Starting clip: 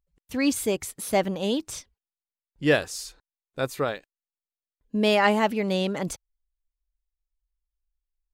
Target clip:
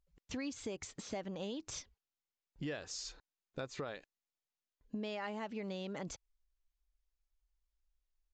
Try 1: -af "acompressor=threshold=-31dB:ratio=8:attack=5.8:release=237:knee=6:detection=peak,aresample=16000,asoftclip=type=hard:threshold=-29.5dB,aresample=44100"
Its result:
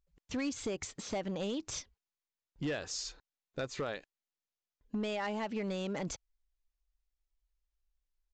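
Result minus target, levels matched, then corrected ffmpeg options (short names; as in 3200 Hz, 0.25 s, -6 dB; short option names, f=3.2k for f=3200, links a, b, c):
compressor: peak gain reduction -6 dB
-af "acompressor=threshold=-38dB:ratio=8:attack=5.8:release=237:knee=6:detection=peak,aresample=16000,asoftclip=type=hard:threshold=-29.5dB,aresample=44100"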